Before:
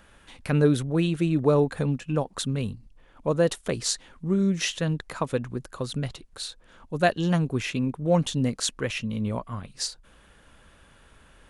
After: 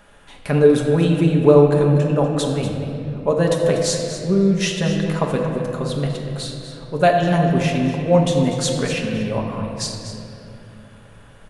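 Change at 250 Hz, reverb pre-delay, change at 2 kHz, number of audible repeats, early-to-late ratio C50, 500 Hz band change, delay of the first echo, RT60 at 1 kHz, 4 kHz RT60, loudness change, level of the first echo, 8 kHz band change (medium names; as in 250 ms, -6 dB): +7.0 dB, 5 ms, +5.5 dB, 1, 3.0 dB, +10.0 dB, 243 ms, 2.3 s, 1.6 s, +8.0 dB, -12.0 dB, +4.0 dB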